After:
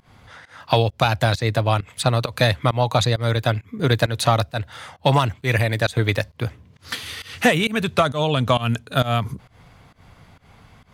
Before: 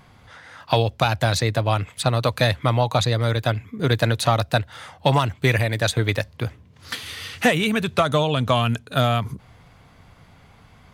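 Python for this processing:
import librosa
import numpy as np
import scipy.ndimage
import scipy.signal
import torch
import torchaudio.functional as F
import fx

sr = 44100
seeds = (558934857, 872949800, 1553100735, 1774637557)

y = fx.volume_shaper(x, sr, bpm=133, per_beat=1, depth_db=-22, release_ms=153.0, shape='fast start')
y = y * 10.0 ** (1.5 / 20.0)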